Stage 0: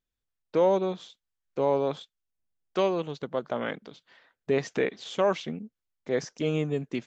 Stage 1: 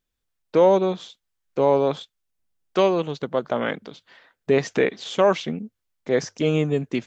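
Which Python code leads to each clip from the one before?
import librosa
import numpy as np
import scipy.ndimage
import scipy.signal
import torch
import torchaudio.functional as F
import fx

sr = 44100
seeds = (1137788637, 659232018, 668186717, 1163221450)

y = fx.hum_notches(x, sr, base_hz=50, count=2)
y = y * librosa.db_to_amplitude(6.5)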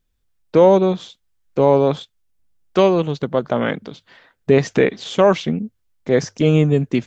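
y = fx.low_shelf(x, sr, hz=200.0, db=10.0)
y = y * librosa.db_to_amplitude(3.0)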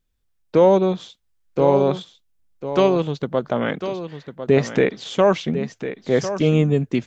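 y = x + 10.0 ** (-10.5 / 20.0) * np.pad(x, (int(1050 * sr / 1000.0), 0))[:len(x)]
y = y * librosa.db_to_amplitude(-2.5)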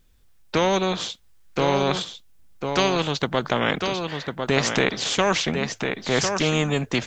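y = fx.spectral_comp(x, sr, ratio=2.0)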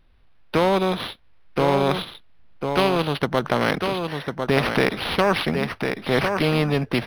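y = np.interp(np.arange(len(x)), np.arange(len(x))[::6], x[::6])
y = y * librosa.db_to_amplitude(2.0)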